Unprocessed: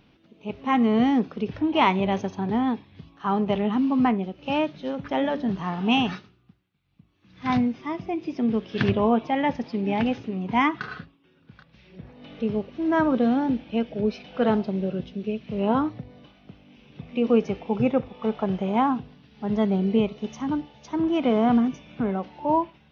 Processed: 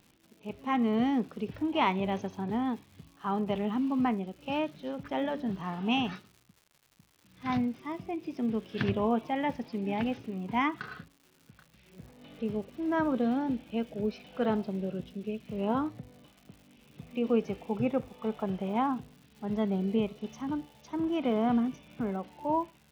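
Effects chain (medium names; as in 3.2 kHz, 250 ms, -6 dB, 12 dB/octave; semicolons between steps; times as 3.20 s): crackle 230 per s -41 dBFS; trim -7 dB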